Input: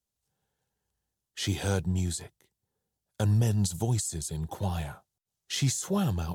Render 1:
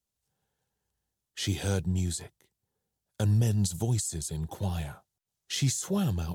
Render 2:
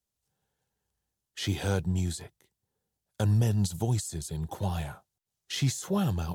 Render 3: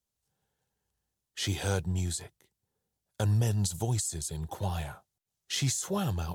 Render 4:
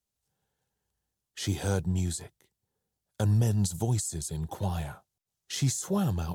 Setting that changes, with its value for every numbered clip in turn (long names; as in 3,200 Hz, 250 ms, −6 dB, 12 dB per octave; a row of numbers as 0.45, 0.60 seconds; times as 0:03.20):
dynamic equaliser, frequency: 980, 7,800, 210, 2,700 Hertz